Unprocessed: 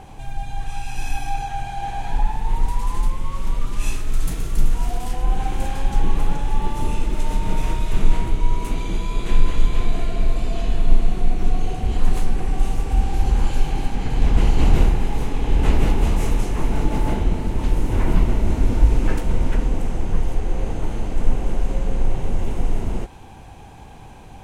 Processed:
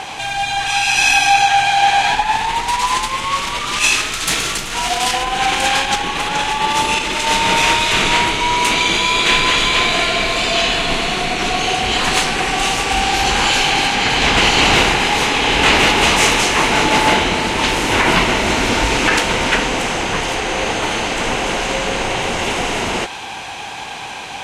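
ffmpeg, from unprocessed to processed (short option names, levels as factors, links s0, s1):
-filter_complex "[0:a]asettb=1/sr,asplit=3[s0][s1][s2];[s0]atrim=end=2.144[s3];[s1]atrim=start=2.14:end=7.27,asetpts=PTS-STARTPTS,afade=t=in:d=0.004:c=qsin,afade=t=out:st=5.126:d=0.004:c=qsin,acompressor=threshold=0.126:ratio=2.5:attack=3.2:release=140:knee=1:detection=peak[s4];[s2]atrim=start=7.266[s5];[s3][s4]acrossfade=d=0.004:c1=hsin:c2=qsin[s6];[s6][s5]acrossfade=d=0.004:c1=qsin:c2=hsin,lowpass=3500,aderivative,alimiter=level_in=59.6:limit=0.891:release=50:level=0:latency=1,volume=0.891"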